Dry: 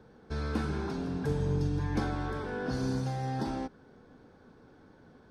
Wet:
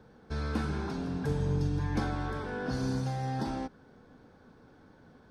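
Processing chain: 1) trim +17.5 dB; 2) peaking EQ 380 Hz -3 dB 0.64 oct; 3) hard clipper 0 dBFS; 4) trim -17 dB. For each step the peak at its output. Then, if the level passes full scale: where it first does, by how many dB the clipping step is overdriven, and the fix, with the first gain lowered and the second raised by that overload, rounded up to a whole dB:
-1.0 dBFS, -1.5 dBFS, -1.5 dBFS, -18.5 dBFS; nothing clips

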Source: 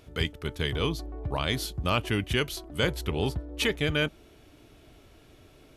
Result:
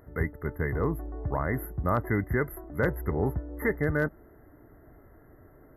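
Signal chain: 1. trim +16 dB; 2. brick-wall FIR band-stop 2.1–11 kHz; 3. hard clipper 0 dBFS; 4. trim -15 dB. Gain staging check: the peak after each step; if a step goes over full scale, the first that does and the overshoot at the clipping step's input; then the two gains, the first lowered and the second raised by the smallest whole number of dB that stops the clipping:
+3.5 dBFS, +3.0 dBFS, 0.0 dBFS, -15.0 dBFS; step 1, 3.0 dB; step 1 +13 dB, step 4 -12 dB

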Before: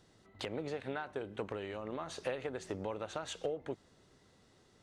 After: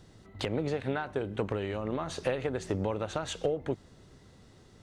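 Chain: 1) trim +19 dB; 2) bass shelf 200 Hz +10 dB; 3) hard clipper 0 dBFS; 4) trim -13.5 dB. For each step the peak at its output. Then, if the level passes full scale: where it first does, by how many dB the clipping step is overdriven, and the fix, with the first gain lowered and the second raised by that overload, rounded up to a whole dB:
-6.5 dBFS, -3.5 dBFS, -3.5 dBFS, -17.0 dBFS; nothing clips

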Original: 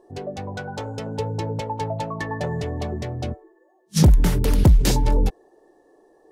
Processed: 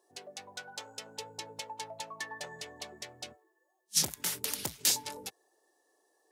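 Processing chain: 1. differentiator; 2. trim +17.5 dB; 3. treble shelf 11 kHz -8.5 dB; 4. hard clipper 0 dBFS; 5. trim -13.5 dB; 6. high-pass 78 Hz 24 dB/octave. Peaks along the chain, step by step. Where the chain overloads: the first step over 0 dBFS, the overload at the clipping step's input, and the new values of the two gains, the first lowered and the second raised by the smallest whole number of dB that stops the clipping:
-10.5 dBFS, +7.0 dBFS, +5.5 dBFS, 0.0 dBFS, -13.5 dBFS, -13.0 dBFS; step 2, 5.5 dB; step 2 +11.5 dB, step 5 -7.5 dB

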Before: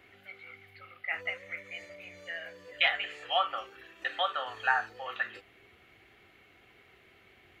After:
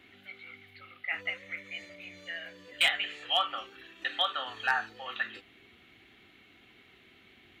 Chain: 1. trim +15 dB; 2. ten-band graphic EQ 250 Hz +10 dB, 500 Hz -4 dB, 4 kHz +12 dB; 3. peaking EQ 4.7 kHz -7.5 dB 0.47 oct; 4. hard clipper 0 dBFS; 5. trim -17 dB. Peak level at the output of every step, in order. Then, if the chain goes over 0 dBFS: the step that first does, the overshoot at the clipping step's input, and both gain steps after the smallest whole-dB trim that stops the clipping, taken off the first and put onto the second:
+3.0 dBFS, +9.5 dBFS, +8.5 dBFS, 0.0 dBFS, -17.0 dBFS; step 1, 8.5 dB; step 1 +6 dB, step 5 -8 dB

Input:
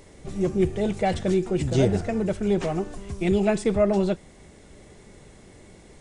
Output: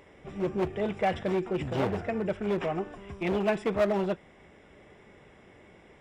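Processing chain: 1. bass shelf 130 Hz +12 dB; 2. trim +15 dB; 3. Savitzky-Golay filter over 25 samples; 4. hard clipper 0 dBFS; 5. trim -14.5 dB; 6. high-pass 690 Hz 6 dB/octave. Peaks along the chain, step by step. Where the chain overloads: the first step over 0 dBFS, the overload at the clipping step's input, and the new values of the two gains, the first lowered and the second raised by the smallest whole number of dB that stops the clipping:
-5.0 dBFS, +10.0 dBFS, +9.5 dBFS, 0.0 dBFS, -14.5 dBFS, -14.0 dBFS; step 2, 9.5 dB; step 2 +5 dB, step 5 -4.5 dB

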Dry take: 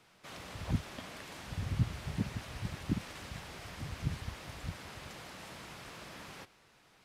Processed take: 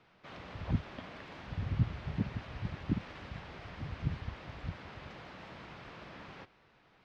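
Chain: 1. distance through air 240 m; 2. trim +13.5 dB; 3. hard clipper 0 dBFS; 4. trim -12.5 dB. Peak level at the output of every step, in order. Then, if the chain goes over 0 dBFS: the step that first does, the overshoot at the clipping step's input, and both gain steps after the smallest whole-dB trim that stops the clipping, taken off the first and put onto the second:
-18.5 dBFS, -5.0 dBFS, -5.0 dBFS, -17.5 dBFS; nothing clips

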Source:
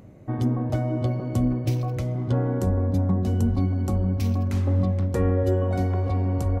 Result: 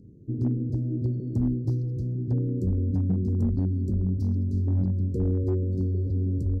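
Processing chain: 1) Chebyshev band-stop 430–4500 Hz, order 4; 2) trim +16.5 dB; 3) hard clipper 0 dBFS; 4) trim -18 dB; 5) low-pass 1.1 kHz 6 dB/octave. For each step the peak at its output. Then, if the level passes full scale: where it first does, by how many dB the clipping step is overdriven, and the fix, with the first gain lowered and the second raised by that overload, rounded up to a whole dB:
-13.0 dBFS, +3.5 dBFS, 0.0 dBFS, -18.0 dBFS, -18.0 dBFS; step 2, 3.5 dB; step 2 +12.5 dB, step 4 -14 dB

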